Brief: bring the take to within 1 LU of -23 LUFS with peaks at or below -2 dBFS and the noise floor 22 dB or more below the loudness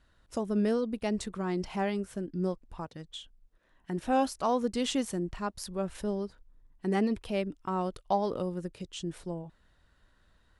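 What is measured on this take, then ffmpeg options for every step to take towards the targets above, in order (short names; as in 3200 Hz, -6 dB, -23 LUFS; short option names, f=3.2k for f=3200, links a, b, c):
loudness -32.5 LUFS; peak -16.0 dBFS; loudness target -23.0 LUFS
-> -af "volume=9.5dB"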